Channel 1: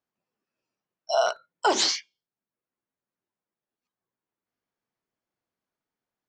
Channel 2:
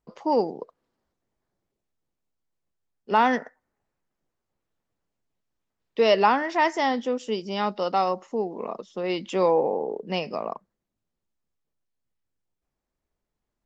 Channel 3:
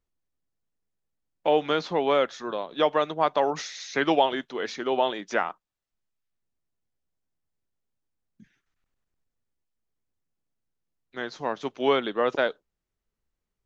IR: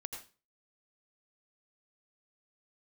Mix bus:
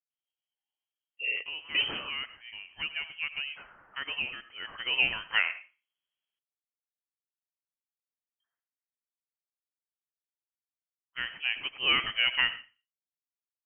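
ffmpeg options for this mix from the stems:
-filter_complex "[0:a]equalizer=frequency=1300:width=0.38:gain=-10,adelay=100,volume=-5.5dB,asplit=2[link_01][link_02];[link_02]volume=-19dB[link_03];[2:a]highpass=frequency=880:poles=1,agate=range=-24dB:threshold=-55dB:ratio=16:detection=peak,volume=-10dB,afade=type=in:start_time=4.53:duration=0.43:silence=0.298538,asplit=2[link_04][link_05];[link_05]volume=-4dB[link_06];[3:a]atrim=start_sample=2205[link_07];[link_03][link_06]amix=inputs=2:normalize=0[link_08];[link_08][link_07]afir=irnorm=-1:irlink=0[link_09];[link_01][link_04][link_09]amix=inputs=3:normalize=0,dynaudnorm=framelen=680:gausssize=5:maxgain=9dB,lowpass=frequency=2900:width_type=q:width=0.5098,lowpass=frequency=2900:width_type=q:width=0.6013,lowpass=frequency=2900:width_type=q:width=0.9,lowpass=frequency=2900:width_type=q:width=2.563,afreqshift=-3400"

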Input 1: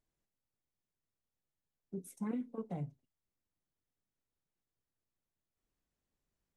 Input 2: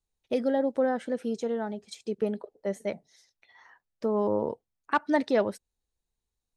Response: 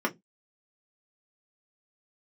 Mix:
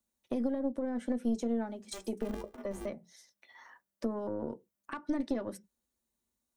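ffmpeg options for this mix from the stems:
-filter_complex "[0:a]aeval=exprs='val(0)*sgn(sin(2*PI*200*n/s))':channel_layout=same,volume=-2dB,asplit=2[link_01][link_02];[link_02]volume=-13.5dB[link_03];[1:a]highpass=48,highshelf=frequency=6500:gain=11.5,alimiter=limit=-20.5dB:level=0:latency=1:release=96,volume=0.5dB,asplit=3[link_04][link_05][link_06];[link_05]volume=-12.5dB[link_07];[link_06]apad=whole_len=289407[link_08];[link_01][link_08]sidechaingate=range=-33dB:threshold=-49dB:ratio=16:detection=peak[link_09];[2:a]atrim=start_sample=2205[link_10];[link_03][link_07]amix=inputs=2:normalize=0[link_11];[link_11][link_10]afir=irnorm=-1:irlink=0[link_12];[link_09][link_04][link_12]amix=inputs=3:normalize=0,acrossover=split=270[link_13][link_14];[link_14]acompressor=threshold=-34dB:ratio=6[link_15];[link_13][link_15]amix=inputs=2:normalize=0,aeval=exprs='(tanh(7.94*val(0)+0.7)-tanh(0.7))/7.94':channel_layout=same"

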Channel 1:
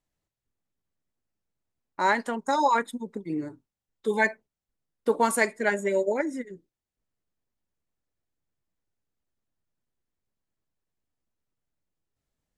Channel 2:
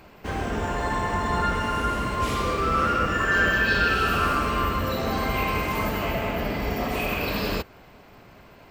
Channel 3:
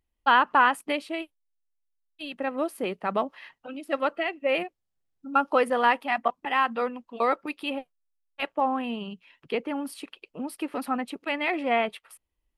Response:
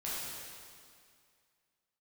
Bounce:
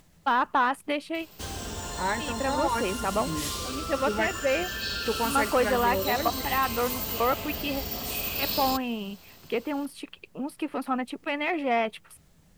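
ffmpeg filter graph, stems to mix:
-filter_complex "[0:a]equalizer=frequency=170:width_type=o:width=0.33:gain=12.5,acompressor=mode=upward:threshold=-32dB:ratio=2.5,volume=-5.5dB[link_01];[1:a]acompressor=threshold=-28dB:ratio=2.5,aexciter=amount=6.9:drive=4.7:freq=3100,adelay=1150,volume=-7.5dB[link_02];[2:a]deesser=0.95,volume=0.5dB[link_03];[link_01][link_02][link_03]amix=inputs=3:normalize=0,asoftclip=type=tanh:threshold=-14dB,equalizer=frequency=76:width_type=o:width=0.86:gain=4.5"

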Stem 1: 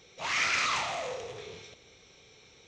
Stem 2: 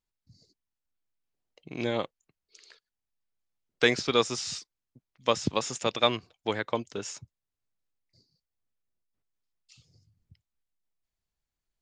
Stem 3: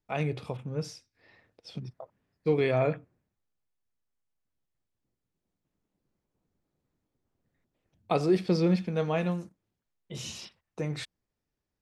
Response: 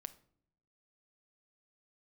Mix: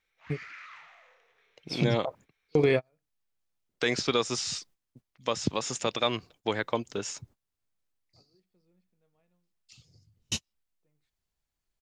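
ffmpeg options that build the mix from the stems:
-filter_complex "[0:a]bandpass=frequency=1700:width_type=q:width=2.4:csg=0,volume=-13dB[link_01];[1:a]volume=2dB,asplit=2[link_02][link_03];[2:a]dynaudnorm=framelen=160:gausssize=9:maxgain=11.5dB,adelay=50,volume=0dB[link_04];[link_03]apad=whole_len=523138[link_05];[link_04][link_05]sidechaingate=range=-56dB:threshold=-54dB:ratio=16:detection=peak[link_06];[link_01][link_02][link_06]amix=inputs=3:normalize=0,alimiter=limit=-13.5dB:level=0:latency=1:release=125"

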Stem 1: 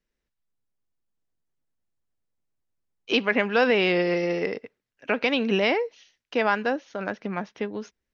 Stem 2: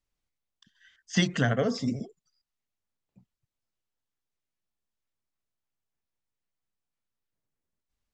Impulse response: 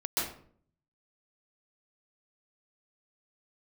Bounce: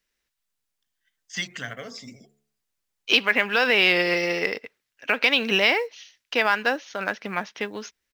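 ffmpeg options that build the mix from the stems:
-filter_complex "[0:a]alimiter=limit=-12.5dB:level=0:latency=1:release=154,volume=3dB[link_01];[1:a]agate=range=-18dB:threshold=-55dB:ratio=16:detection=peak,equalizer=frequency=2200:width_type=o:width=0.3:gain=7.5,bandreject=frequency=71.81:width_type=h:width=4,bandreject=frequency=143.62:width_type=h:width=4,bandreject=frequency=215.43:width_type=h:width=4,bandreject=frequency=287.24:width_type=h:width=4,bandreject=frequency=359.05:width_type=h:width=4,bandreject=frequency=430.86:width_type=h:width=4,bandreject=frequency=502.67:width_type=h:width=4,bandreject=frequency=574.48:width_type=h:width=4,bandreject=frequency=646.29:width_type=h:width=4,bandreject=frequency=718.1:width_type=h:width=4,bandreject=frequency=789.91:width_type=h:width=4,bandreject=frequency=861.72:width_type=h:width=4,bandreject=frequency=933.53:width_type=h:width=4,adelay=200,volume=-8.5dB[link_02];[link_01][link_02]amix=inputs=2:normalize=0,tiltshelf=frequency=870:gain=-7.5,acrusher=bits=8:mode=log:mix=0:aa=0.000001"

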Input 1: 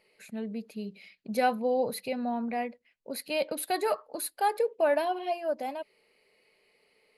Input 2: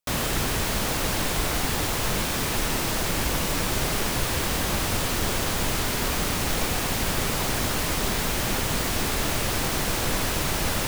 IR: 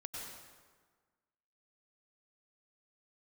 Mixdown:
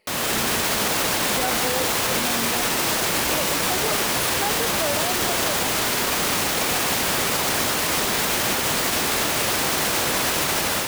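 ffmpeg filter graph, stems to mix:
-filter_complex "[0:a]volume=2.5dB[link_01];[1:a]highpass=frequency=350:poles=1,dynaudnorm=framelen=120:gausssize=5:maxgain=8dB,volume=1.5dB[link_02];[link_01][link_02]amix=inputs=2:normalize=0,alimiter=limit=-12.5dB:level=0:latency=1"

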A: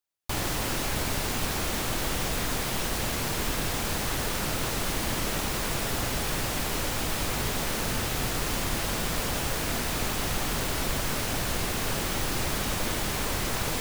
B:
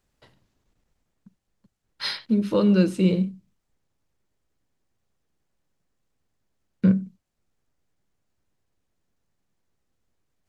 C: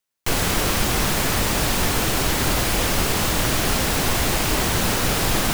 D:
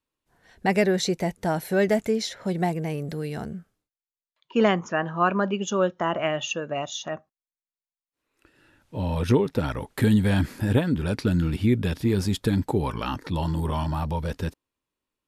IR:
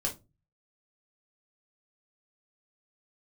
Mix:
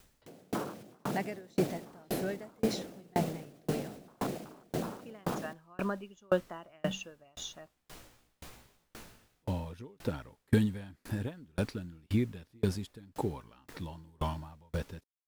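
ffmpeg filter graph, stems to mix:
-filter_complex "[0:a]flanger=delay=16:depth=3.2:speed=0.16,adelay=1200,volume=-18.5dB[link_01];[1:a]volume=-17.5dB[link_02];[2:a]afwtdn=0.1,highpass=frequency=150:width=0.5412,highpass=frequency=150:width=1.3066,alimiter=limit=-23.5dB:level=0:latency=1:release=51,volume=2dB[link_03];[3:a]adelay=500,volume=-2.5dB[link_04];[link_01][link_02][link_03][link_04]amix=inputs=4:normalize=0,acompressor=mode=upward:threshold=-37dB:ratio=2.5,aeval=exprs='val(0)*pow(10,-37*if(lt(mod(1.9*n/s,1),2*abs(1.9)/1000),1-mod(1.9*n/s,1)/(2*abs(1.9)/1000),(mod(1.9*n/s,1)-2*abs(1.9)/1000)/(1-2*abs(1.9)/1000))/20)':channel_layout=same"

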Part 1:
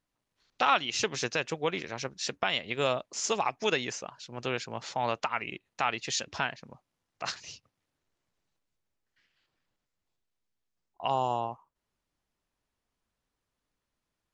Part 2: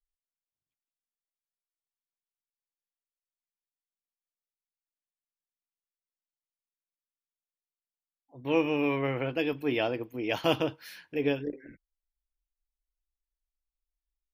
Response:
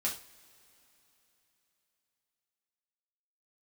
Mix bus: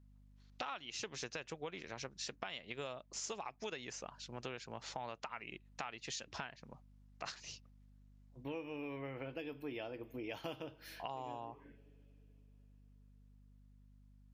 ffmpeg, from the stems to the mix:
-filter_complex "[0:a]aeval=exprs='val(0)+0.00141*(sin(2*PI*50*n/s)+sin(2*PI*2*50*n/s)/2+sin(2*PI*3*50*n/s)/3+sin(2*PI*4*50*n/s)/4+sin(2*PI*5*50*n/s)/5)':channel_layout=same,volume=-4.5dB,asplit=2[link_01][link_02];[1:a]agate=range=-19dB:threshold=-49dB:ratio=16:detection=peak,volume=-7.5dB,asplit=2[link_03][link_04];[link_04]volume=-14.5dB[link_05];[link_02]apad=whole_len=632271[link_06];[link_03][link_06]sidechaincompress=threshold=-45dB:ratio=8:attack=16:release=566[link_07];[2:a]atrim=start_sample=2205[link_08];[link_05][link_08]afir=irnorm=-1:irlink=0[link_09];[link_01][link_07][link_09]amix=inputs=3:normalize=0,acompressor=threshold=-41dB:ratio=6"

